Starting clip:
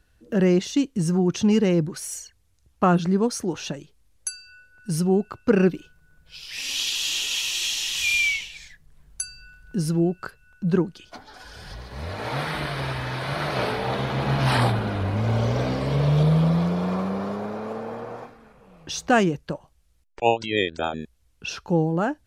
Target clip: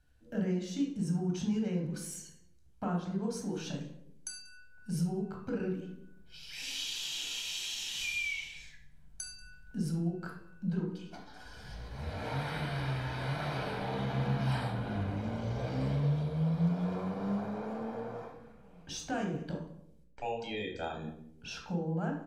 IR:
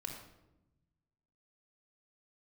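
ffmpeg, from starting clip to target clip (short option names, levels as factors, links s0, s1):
-filter_complex "[0:a]aecho=1:1:186:0.0668,acompressor=threshold=0.0562:ratio=5[s0];[1:a]atrim=start_sample=2205,asetrate=70560,aresample=44100[s1];[s0][s1]afir=irnorm=-1:irlink=0,volume=0.708"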